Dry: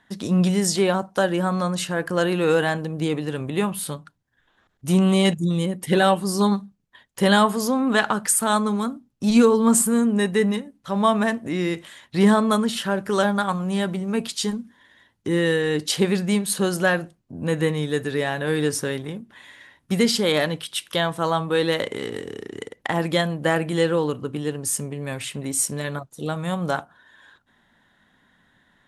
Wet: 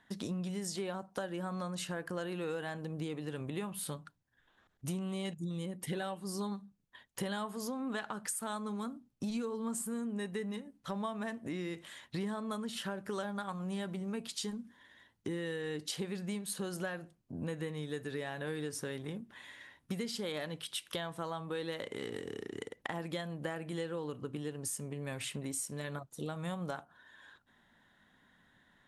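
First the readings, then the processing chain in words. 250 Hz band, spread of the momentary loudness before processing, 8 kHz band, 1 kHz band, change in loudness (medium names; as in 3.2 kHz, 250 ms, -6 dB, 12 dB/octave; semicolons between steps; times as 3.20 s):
-17.0 dB, 12 LU, -16.0 dB, -18.5 dB, -17.5 dB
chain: compression 6:1, threshold -30 dBFS, peak gain reduction 17.5 dB; trim -6 dB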